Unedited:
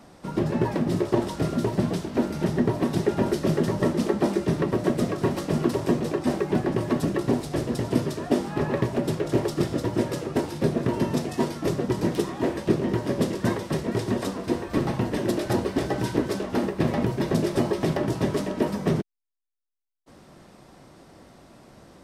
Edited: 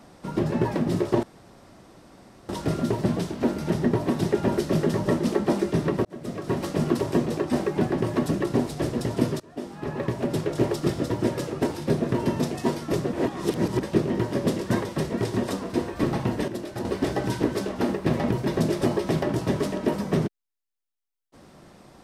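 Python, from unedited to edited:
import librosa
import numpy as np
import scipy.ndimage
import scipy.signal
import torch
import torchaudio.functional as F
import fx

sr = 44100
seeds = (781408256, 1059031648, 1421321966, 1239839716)

y = fx.edit(x, sr, fx.insert_room_tone(at_s=1.23, length_s=1.26),
    fx.fade_in_span(start_s=4.79, length_s=0.62),
    fx.fade_in_from(start_s=8.14, length_s=0.99, floor_db=-22.5),
    fx.reverse_span(start_s=11.87, length_s=0.69),
    fx.clip_gain(start_s=15.22, length_s=0.37, db=-8.0), tone=tone)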